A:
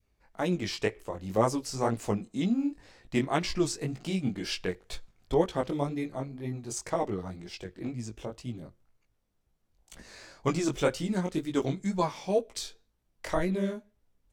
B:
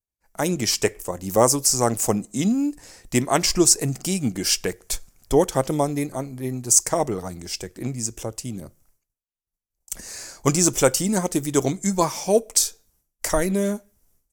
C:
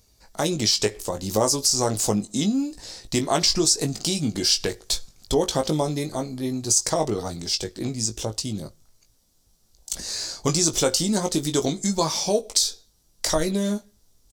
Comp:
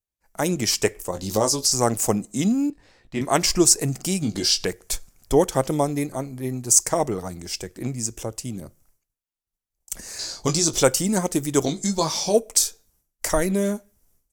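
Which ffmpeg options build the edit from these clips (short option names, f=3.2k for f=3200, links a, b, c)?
-filter_complex "[2:a]asplit=4[a][b][c][d];[1:a]asplit=6[e][f][g][h][i][j];[e]atrim=end=1.132[k];[a]atrim=start=1.128:end=1.722[l];[f]atrim=start=1.718:end=2.702[m];[0:a]atrim=start=2.698:end=3.212[n];[g]atrim=start=3.208:end=4.222[o];[b]atrim=start=4.218:end=4.652[p];[h]atrim=start=4.648:end=10.192[q];[c]atrim=start=10.188:end=10.832[r];[i]atrim=start=10.828:end=11.632[s];[d]atrim=start=11.628:end=12.342[t];[j]atrim=start=12.338[u];[k][l]acrossfade=d=0.004:c1=hsin:c2=hsin[v];[v][m]acrossfade=d=0.004:c1=hsin:c2=hsin[w];[w][n]acrossfade=d=0.004:c1=hsin:c2=hsin[x];[x][o]acrossfade=d=0.004:c1=hsin:c2=hsin[y];[y][p]acrossfade=d=0.004:c1=hsin:c2=hsin[z];[z][q]acrossfade=d=0.004:c1=hsin:c2=hsin[aa];[aa][r]acrossfade=d=0.004:c1=hsin:c2=hsin[ab];[ab][s]acrossfade=d=0.004:c1=hsin:c2=hsin[ac];[ac][t]acrossfade=d=0.004:c1=hsin:c2=hsin[ad];[ad][u]acrossfade=d=0.004:c1=hsin:c2=hsin"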